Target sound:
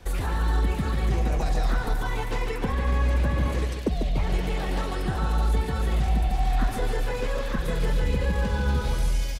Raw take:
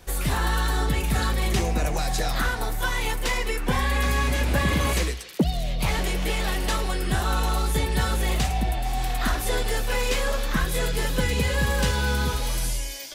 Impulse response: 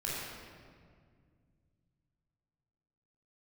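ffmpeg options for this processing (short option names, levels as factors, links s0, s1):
-filter_complex "[0:a]lowpass=f=4000:p=1,lowshelf=f=270:g=3,acrossover=split=340|1300[s0][s1][s2];[s2]alimiter=level_in=2.11:limit=0.0631:level=0:latency=1:release=11,volume=0.473[s3];[s0][s1][s3]amix=inputs=3:normalize=0,acompressor=threshold=0.0794:ratio=5,atempo=1.4,aecho=1:1:145|290|435|580|725|870:0.447|0.237|0.125|0.0665|0.0352|0.0187"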